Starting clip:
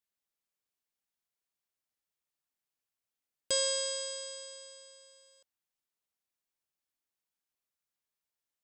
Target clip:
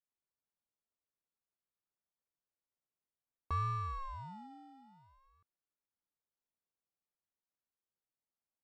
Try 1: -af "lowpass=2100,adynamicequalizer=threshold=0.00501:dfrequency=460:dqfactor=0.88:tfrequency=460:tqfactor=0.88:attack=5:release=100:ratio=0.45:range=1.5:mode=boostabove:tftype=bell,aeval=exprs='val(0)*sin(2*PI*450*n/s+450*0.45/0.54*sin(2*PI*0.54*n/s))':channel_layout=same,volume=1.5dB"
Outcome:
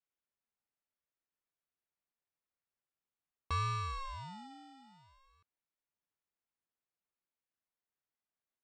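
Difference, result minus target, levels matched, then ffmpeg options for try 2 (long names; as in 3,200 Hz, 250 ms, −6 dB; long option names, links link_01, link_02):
2,000 Hz band +6.5 dB
-af "lowpass=970,adynamicequalizer=threshold=0.00501:dfrequency=460:dqfactor=0.88:tfrequency=460:tqfactor=0.88:attack=5:release=100:ratio=0.45:range=1.5:mode=boostabove:tftype=bell,aeval=exprs='val(0)*sin(2*PI*450*n/s+450*0.45/0.54*sin(2*PI*0.54*n/s))':channel_layout=same,volume=1.5dB"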